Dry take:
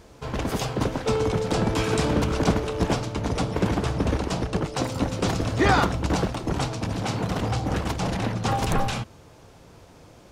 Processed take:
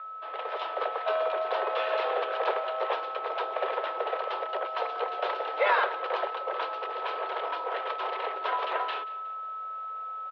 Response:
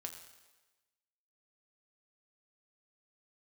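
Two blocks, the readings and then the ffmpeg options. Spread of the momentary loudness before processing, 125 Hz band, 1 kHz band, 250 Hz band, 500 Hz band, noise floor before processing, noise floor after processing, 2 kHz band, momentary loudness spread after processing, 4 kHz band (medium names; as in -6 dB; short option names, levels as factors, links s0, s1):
5 LU, under -40 dB, 0.0 dB, -27.5 dB, -3.0 dB, -50 dBFS, -37 dBFS, -2.0 dB, 8 LU, -6.5 dB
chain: -filter_complex "[0:a]aeval=exprs='val(0)+0.0316*sin(2*PI*1100*n/s)':c=same,highpass=f=270:t=q:w=0.5412,highpass=f=270:t=q:w=1.307,lowpass=f=3400:t=q:w=0.5176,lowpass=f=3400:t=q:w=0.7071,lowpass=f=3400:t=q:w=1.932,afreqshift=200,asplit=2[s0][s1];[s1]aecho=0:1:182|364|546:0.112|0.0482|0.0207[s2];[s0][s2]amix=inputs=2:normalize=0,dynaudnorm=f=150:g=7:m=1.58,volume=0.422"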